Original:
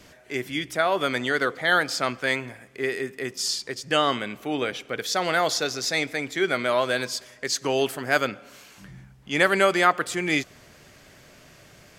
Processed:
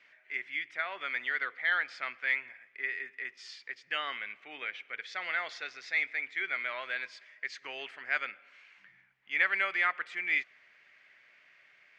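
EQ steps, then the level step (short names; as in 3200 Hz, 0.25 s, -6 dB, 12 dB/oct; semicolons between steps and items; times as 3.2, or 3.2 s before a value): band-pass 2100 Hz, Q 3.4; air absorption 98 m; 0.0 dB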